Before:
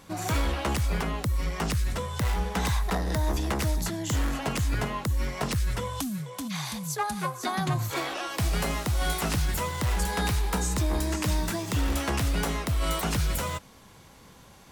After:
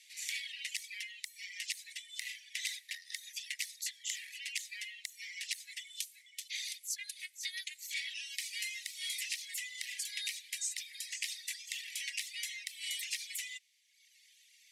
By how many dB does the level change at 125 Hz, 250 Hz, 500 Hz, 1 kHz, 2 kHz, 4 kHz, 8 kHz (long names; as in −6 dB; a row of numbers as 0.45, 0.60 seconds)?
below −40 dB, below −40 dB, below −40 dB, below −40 dB, −6.5 dB, −3.5 dB, −4.0 dB